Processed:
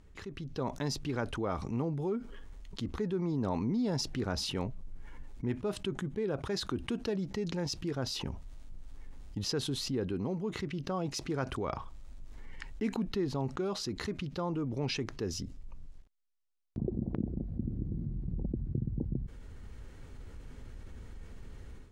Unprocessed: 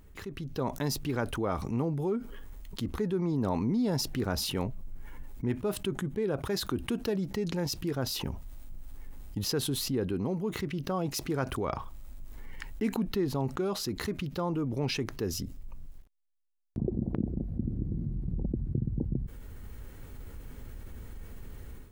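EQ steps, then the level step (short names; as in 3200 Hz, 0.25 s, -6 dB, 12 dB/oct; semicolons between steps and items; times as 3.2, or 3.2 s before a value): Chebyshev low-pass 6300 Hz, order 2; -2.0 dB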